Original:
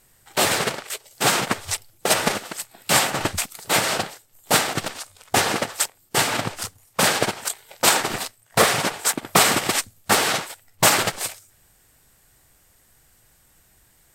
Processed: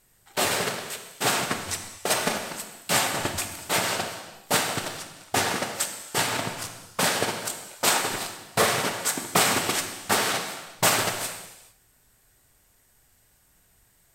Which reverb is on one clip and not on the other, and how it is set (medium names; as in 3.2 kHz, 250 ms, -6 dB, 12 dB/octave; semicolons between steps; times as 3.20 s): gated-style reverb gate 470 ms falling, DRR 4.5 dB; trim -5.5 dB